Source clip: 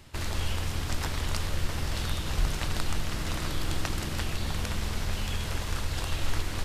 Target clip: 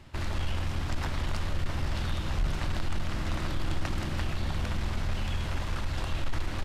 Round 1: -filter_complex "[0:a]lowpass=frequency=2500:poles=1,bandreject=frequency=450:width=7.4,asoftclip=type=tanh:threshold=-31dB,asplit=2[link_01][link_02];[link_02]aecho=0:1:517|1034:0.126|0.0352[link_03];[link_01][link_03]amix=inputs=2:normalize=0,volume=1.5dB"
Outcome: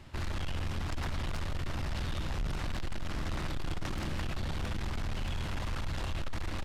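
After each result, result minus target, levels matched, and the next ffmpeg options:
echo 387 ms early; soft clipping: distortion +9 dB
-filter_complex "[0:a]lowpass=frequency=2500:poles=1,bandreject=frequency=450:width=7.4,asoftclip=type=tanh:threshold=-31dB,asplit=2[link_01][link_02];[link_02]aecho=0:1:904|1808:0.126|0.0352[link_03];[link_01][link_03]amix=inputs=2:normalize=0,volume=1.5dB"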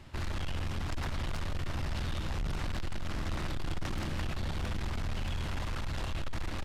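soft clipping: distortion +9 dB
-filter_complex "[0:a]lowpass=frequency=2500:poles=1,bandreject=frequency=450:width=7.4,asoftclip=type=tanh:threshold=-21.5dB,asplit=2[link_01][link_02];[link_02]aecho=0:1:904|1808:0.126|0.0352[link_03];[link_01][link_03]amix=inputs=2:normalize=0,volume=1.5dB"

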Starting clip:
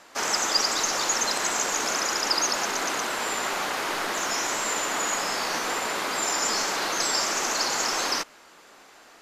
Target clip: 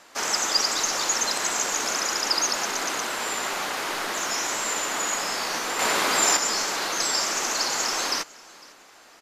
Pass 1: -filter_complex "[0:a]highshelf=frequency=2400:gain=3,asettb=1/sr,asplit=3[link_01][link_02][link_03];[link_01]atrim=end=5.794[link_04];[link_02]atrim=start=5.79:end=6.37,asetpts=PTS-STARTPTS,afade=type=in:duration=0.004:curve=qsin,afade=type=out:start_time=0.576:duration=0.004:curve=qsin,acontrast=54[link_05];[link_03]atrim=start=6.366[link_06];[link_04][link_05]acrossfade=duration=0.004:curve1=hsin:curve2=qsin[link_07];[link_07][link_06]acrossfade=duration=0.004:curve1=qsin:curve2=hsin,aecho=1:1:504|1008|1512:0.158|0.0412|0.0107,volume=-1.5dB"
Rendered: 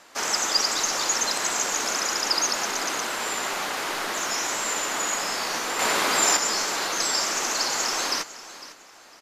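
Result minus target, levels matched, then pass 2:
echo-to-direct +7 dB
-filter_complex "[0:a]highshelf=frequency=2400:gain=3,asettb=1/sr,asplit=3[link_01][link_02][link_03];[link_01]atrim=end=5.794[link_04];[link_02]atrim=start=5.79:end=6.37,asetpts=PTS-STARTPTS,afade=type=in:duration=0.004:curve=qsin,afade=type=out:start_time=0.576:duration=0.004:curve=qsin,acontrast=54[link_05];[link_03]atrim=start=6.366[link_06];[link_04][link_05]acrossfade=duration=0.004:curve1=hsin:curve2=qsin[link_07];[link_07][link_06]acrossfade=duration=0.004:curve1=qsin:curve2=hsin,aecho=1:1:504|1008:0.0708|0.0184,volume=-1.5dB"

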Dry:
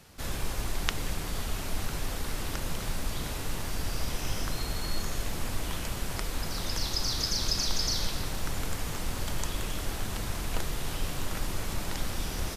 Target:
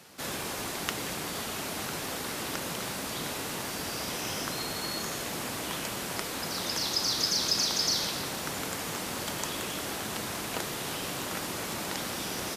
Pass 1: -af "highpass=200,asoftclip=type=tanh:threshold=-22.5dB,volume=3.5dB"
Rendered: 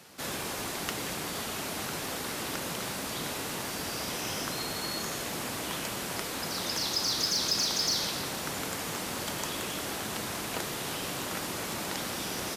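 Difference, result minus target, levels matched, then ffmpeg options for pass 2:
soft clipping: distortion +4 dB
-af "highpass=200,asoftclip=type=tanh:threshold=-16.5dB,volume=3.5dB"

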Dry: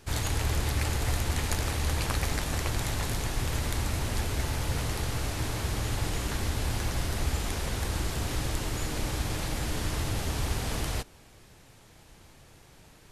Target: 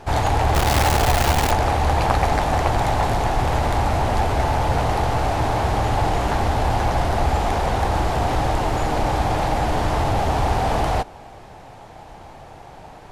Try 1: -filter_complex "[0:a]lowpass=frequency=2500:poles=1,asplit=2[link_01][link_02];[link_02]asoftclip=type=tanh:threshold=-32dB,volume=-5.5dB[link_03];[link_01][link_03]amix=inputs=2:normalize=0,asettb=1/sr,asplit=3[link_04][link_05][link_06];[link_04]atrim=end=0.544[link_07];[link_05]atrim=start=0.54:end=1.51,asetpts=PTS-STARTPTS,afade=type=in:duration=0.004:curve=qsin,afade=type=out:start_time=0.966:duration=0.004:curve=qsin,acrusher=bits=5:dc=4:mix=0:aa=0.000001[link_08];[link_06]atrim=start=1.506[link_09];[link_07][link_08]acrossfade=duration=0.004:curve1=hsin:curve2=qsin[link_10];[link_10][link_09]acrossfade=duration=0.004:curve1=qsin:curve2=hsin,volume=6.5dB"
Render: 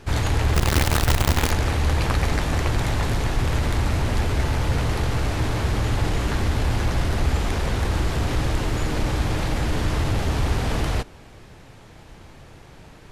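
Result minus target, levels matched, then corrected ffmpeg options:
1,000 Hz band −8.0 dB
-filter_complex "[0:a]lowpass=frequency=2500:poles=1,equalizer=frequency=770:width_type=o:width=0.91:gain=14.5,asplit=2[link_01][link_02];[link_02]asoftclip=type=tanh:threshold=-32dB,volume=-5.5dB[link_03];[link_01][link_03]amix=inputs=2:normalize=0,asettb=1/sr,asplit=3[link_04][link_05][link_06];[link_04]atrim=end=0.544[link_07];[link_05]atrim=start=0.54:end=1.51,asetpts=PTS-STARTPTS,afade=type=in:duration=0.004:curve=qsin,afade=type=out:start_time=0.966:duration=0.004:curve=qsin,acrusher=bits=5:dc=4:mix=0:aa=0.000001[link_08];[link_06]atrim=start=1.506[link_09];[link_07][link_08]acrossfade=duration=0.004:curve1=hsin:curve2=qsin[link_10];[link_10][link_09]acrossfade=duration=0.004:curve1=qsin:curve2=hsin,volume=6.5dB"

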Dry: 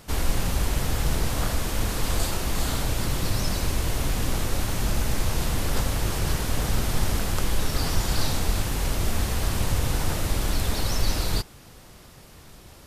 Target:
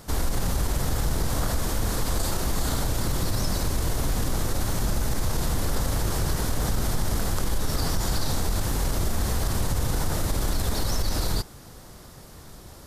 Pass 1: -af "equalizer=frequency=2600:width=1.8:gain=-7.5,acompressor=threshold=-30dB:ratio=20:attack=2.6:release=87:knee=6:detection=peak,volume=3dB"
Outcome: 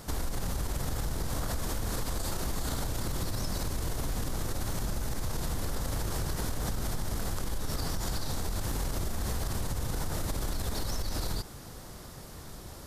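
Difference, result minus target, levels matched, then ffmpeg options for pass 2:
downward compressor: peak gain reduction +8.5 dB
-af "equalizer=frequency=2600:width=1.8:gain=-7.5,acompressor=threshold=-21dB:ratio=20:attack=2.6:release=87:knee=6:detection=peak,volume=3dB"

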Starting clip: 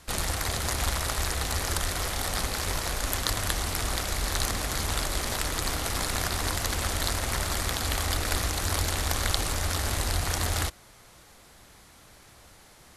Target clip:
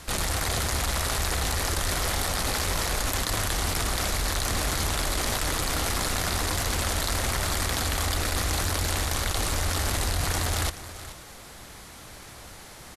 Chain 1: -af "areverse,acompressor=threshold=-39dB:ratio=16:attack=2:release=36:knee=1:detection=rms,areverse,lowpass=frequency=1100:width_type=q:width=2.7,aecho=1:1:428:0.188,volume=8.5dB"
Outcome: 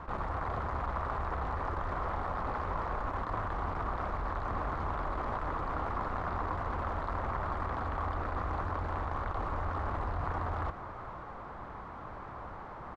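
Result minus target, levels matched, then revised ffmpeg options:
1,000 Hz band +8.5 dB; downward compressor: peak gain reduction +8 dB
-af "areverse,acompressor=threshold=-30.5dB:ratio=16:attack=2:release=36:knee=1:detection=rms,areverse,aecho=1:1:428:0.188,volume=8.5dB"

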